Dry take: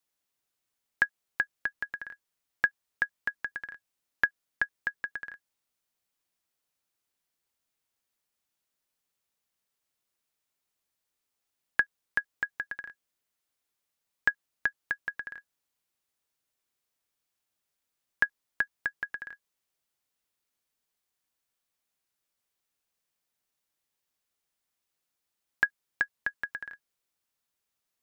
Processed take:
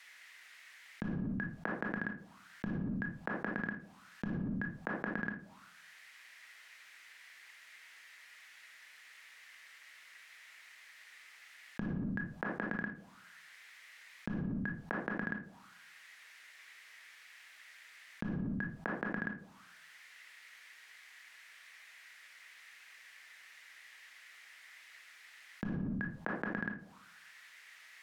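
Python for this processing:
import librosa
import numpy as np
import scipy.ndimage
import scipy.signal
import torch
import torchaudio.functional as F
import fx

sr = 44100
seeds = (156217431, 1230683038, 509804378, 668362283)

y = fx.high_shelf(x, sr, hz=2500.0, db=6.5)
y = fx.level_steps(y, sr, step_db=20)
y = fx.auto_wah(y, sr, base_hz=210.0, top_hz=2000.0, q=4.6, full_db=-41.5, direction='down')
y = fx.room_shoebox(y, sr, seeds[0], volume_m3=430.0, walls='furnished', distance_m=0.6)
y = fx.env_flatten(y, sr, amount_pct=100)
y = y * librosa.db_to_amplitude(1.0)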